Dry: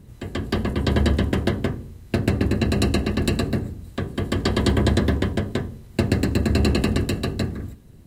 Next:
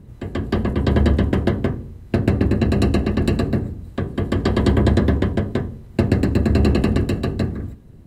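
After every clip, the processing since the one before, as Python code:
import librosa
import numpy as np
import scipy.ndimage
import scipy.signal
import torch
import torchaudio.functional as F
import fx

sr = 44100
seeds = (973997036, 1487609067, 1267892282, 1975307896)

y = fx.high_shelf(x, sr, hz=2400.0, db=-10.5)
y = y * 10.0 ** (3.5 / 20.0)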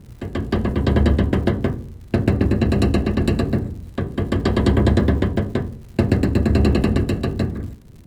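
y = fx.dmg_crackle(x, sr, seeds[0], per_s=130.0, level_db=-38.0)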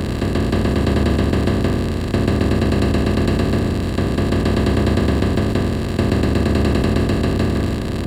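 y = fx.bin_compress(x, sr, power=0.2)
y = y * 10.0 ** (-5.0 / 20.0)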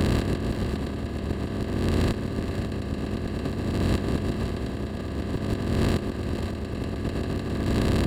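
y = fx.over_compress(x, sr, threshold_db=-21.0, ratio=-0.5)
y = y + 10.0 ** (-9.5 / 20.0) * np.pad(y, (int(540 * sr / 1000.0), 0))[:len(y)]
y = y * 10.0 ** (-5.0 / 20.0)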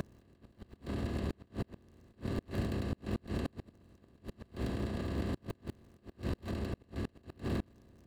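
y = fx.tracing_dist(x, sr, depth_ms=0.31)
y = fx.gate_flip(y, sr, shuts_db=-18.0, range_db=-32)
y = y * 10.0 ** (-5.5 / 20.0)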